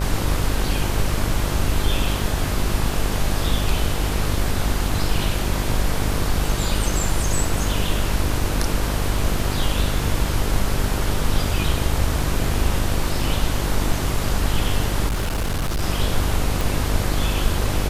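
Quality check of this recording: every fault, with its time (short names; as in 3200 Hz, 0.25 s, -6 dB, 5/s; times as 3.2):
buzz 50 Hz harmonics 25 -25 dBFS
15.07–15.83 clipped -19 dBFS
16.61 pop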